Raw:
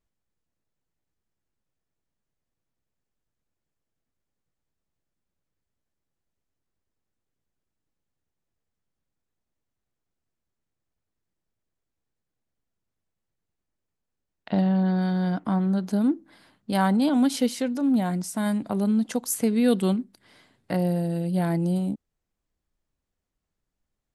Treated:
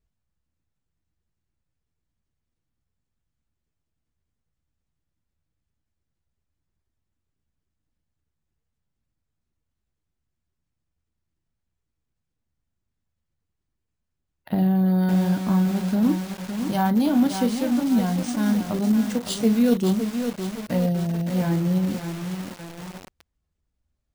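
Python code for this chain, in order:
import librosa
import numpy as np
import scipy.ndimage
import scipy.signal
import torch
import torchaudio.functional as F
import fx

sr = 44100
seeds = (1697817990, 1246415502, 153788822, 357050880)

y = fx.spec_quant(x, sr, step_db=15)
y = fx.peak_eq(y, sr, hz=62.0, db=12.5, octaves=2.7)
y = fx.room_early_taps(y, sr, ms=(13, 38), db=(-13.0, -11.5))
y = np.repeat(y[::3], 3)[:len(y)]
y = fx.echo_crushed(y, sr, ms=562, feedback_pct=55, bits=5, wet_db=-6.5)
y = y * 10.0 ** (-2.0 / 20.0)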